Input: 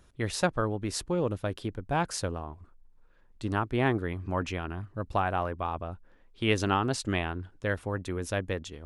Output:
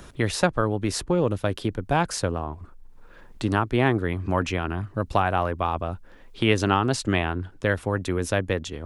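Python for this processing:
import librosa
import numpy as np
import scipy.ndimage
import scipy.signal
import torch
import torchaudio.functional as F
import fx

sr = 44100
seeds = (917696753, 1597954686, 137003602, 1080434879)

y = fx.band_squash(x, sr, depth_pct=40)
y = F.gain(torch.from_numpy(y), 6.0).numpy()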